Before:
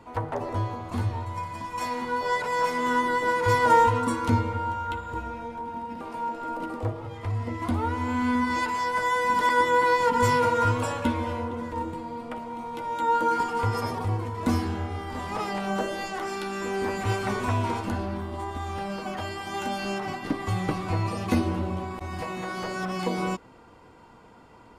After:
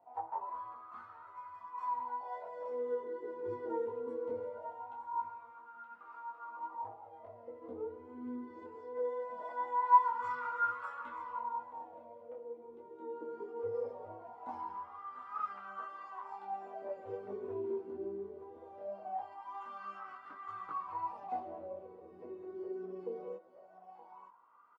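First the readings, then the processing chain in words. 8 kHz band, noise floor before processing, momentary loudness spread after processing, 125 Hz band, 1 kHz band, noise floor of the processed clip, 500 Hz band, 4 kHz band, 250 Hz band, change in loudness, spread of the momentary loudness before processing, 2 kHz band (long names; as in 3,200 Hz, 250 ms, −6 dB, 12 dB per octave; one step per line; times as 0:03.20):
below −35 dB, −51 dBFS, 13 LU, below −30 dB, −11.0 dB, −56 dBFS, −11.0 dB, below −30 dB, −20.0 dB, −12.5 dB, 12 LU, −19.0 dB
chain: single-tap delay 922 ms −12.5 dB
LFO wah 0.21 Hz 380–1,300 Hz, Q 12
micro pitch shift up and down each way 10 cents
level +4 dB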